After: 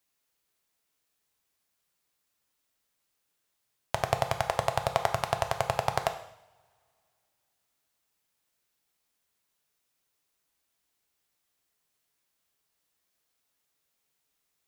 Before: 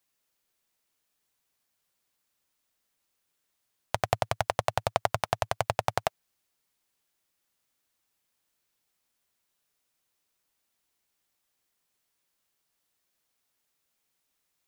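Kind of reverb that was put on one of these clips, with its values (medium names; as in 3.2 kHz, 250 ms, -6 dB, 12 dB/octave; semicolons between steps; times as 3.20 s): two-slope reverb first 0.72 s, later 2.7 s, from -26 dB, DRR 6 dB; trim -1 dB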